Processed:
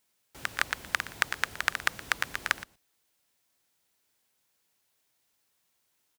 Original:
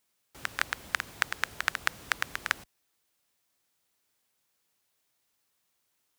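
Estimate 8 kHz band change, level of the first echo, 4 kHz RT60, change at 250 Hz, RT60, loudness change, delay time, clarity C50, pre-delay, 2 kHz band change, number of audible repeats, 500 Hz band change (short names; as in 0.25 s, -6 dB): +1.5 dB, -17.5 dB, none, +1.5 dB, none, +1.5 dB, 0.119 s, none, none, +1.5 dB, 1, +1.5 dB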